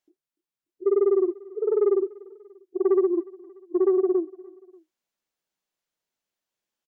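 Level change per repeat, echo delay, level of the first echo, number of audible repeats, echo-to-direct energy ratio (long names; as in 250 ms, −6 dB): −5.5 dB, 293 ms, −23.0 dB, 2, −22.0 dB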